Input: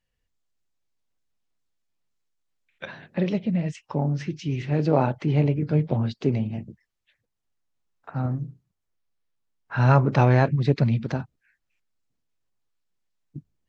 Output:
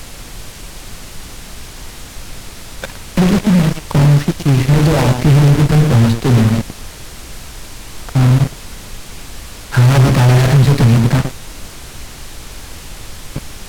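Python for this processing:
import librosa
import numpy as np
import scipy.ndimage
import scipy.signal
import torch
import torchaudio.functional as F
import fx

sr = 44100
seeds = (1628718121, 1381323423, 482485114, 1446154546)

p1 = fx.block_float(x, sr, bits=3)
p2 = p1 + fx.echo_multitap(p1, sr, ms=(48, 117), db=(-16.5, -10.0), dry=0)
p3 = fx.fuzz(p2, sr, gain_db=28.0, gate_db=-33.0)
p4 = fx.low_shelf(p3, sr, hz=230.0, db=9.5)
p5 = fx.dmg_noise_colour(p4, sr, seeds[0], colour='brown', level_db=-31.0)
p6 = fx.quant_dither(p5, sr, seeds[1], bits=6, dither='triangular')
p7 = np.interp(np.arange(len(p6)), np.arange(len(p6))[::2], p6[::2])
y = p7 * 10.0 ** (1.0 / 20.0)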